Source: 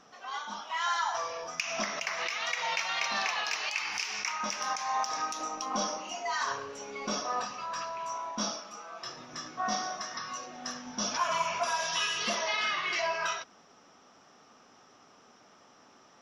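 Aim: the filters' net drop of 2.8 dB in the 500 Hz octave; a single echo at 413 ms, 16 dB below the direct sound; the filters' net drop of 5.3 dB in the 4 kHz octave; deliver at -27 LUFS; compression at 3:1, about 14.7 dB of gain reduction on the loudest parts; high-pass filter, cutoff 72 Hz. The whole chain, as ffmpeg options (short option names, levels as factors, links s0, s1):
-af "highpass=72,equalizer=f=500:t=o:g=-4,equalizer=f=4000:t=o:g=-8,acompressor=threshold=0.00398:ratio=3,aecho=1:1:413:0.158,volume=9.44"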